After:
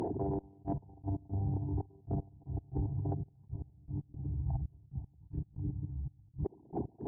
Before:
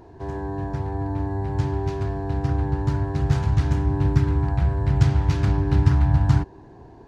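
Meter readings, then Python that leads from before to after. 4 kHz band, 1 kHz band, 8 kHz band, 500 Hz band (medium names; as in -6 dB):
under -30 dB, -16.5 dB, no reading, -12.5 dB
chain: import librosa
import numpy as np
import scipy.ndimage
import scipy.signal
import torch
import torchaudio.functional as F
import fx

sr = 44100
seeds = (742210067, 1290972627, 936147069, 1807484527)

p1 = fx.envelope_sharpen(x, sr, power=3.0)
p2 = scipy.signal.sosfilt(scipy.signal.butter(2, 200.0, 'highpass', fs=sr, output='sos'), p1)
p3 = fx.over_compress(p2, sr, threshold_db=-44.0, ratio=-1.0)
p4 = p3 + fx.echo_diffused(p3, sr, ms=552, feedback_pct=46, wet_db=-14.0, dry=0)
p5 = fx.step_gate(p4, sr, bpm=116, pattern='xxx..x..x.x', floor_db=-24.0, edge_ms=4.5)
p6 = fx.cheby_harmonics(p5, sr, harmonics=(5,), levels_db=(-33,), full_scale_db=-28.0)
p7 = fx.attack_slew(p6, sr, db_per_s=420.0)
y = F.gain(torch.from_numpy(p7), 7.5).numpy()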